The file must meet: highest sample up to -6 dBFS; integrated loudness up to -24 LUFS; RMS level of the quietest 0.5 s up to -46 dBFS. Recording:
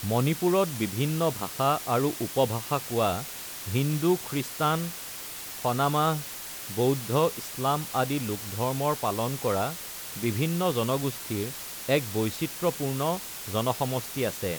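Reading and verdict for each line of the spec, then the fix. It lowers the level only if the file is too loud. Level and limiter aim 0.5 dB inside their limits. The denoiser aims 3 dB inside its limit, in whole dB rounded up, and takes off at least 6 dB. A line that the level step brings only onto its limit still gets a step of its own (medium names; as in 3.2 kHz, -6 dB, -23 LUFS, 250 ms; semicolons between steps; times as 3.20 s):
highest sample -11.0 dBFS: pass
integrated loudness -28.0 LUFS: pass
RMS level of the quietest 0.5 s -39 dBFS: fail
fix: noise reduction 10 dB, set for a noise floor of -39 dBFS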